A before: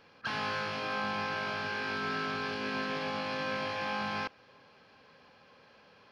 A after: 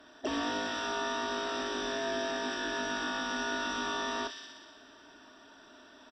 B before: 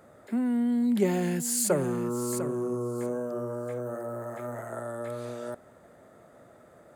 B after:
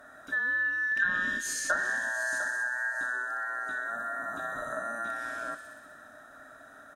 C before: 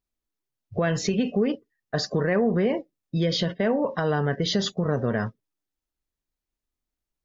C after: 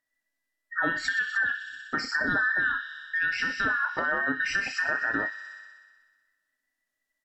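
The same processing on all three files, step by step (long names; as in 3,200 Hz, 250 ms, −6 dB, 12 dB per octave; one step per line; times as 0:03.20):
frequency inversion band by band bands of 2,000 Hz
double-tracking delay 31 ms −13 dB
hollow resonant body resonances 270/610 Hz, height 13 dB, ringing for 65 ms
on a send: delay with a high-pass on its return 62 ms, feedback 75%, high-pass 3,000 Hz, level −4.5 dB
on the sum: treble cut that deepens with the level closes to 2,700 Hz, closed at −18.5 dBFS
in parallel at +3 dB: downward compressor, threshold −36 dBFS
on the sum: level −6 dB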